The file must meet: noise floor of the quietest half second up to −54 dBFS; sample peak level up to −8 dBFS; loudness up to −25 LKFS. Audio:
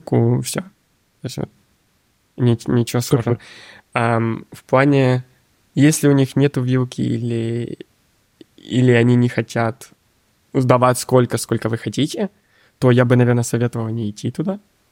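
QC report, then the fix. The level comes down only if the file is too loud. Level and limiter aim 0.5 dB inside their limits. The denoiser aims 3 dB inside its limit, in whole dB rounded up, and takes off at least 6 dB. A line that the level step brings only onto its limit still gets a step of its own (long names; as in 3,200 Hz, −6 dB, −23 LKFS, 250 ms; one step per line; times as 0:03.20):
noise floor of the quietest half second −62 dBFS: in spec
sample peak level −1.5 dBFS: out of spec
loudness −18.0 LKFS: out of spec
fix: level −7.5 dB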